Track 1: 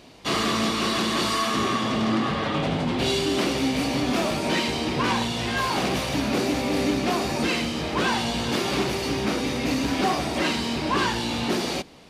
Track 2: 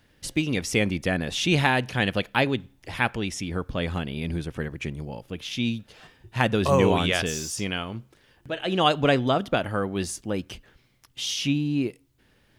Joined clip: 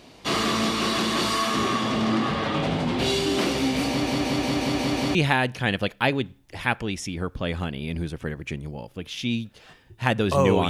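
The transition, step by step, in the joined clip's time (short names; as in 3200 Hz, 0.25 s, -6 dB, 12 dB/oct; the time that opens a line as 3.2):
track 1
3.89 stutter in place 0.18 s, 7 plays
5.15 switch to track 2 from 1.49 s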